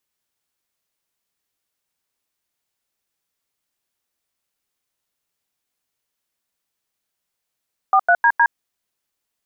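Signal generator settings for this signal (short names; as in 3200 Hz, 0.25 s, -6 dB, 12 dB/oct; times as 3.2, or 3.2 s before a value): DTMF "43DD", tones 65 ms, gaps 90 ms, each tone -13 dBFS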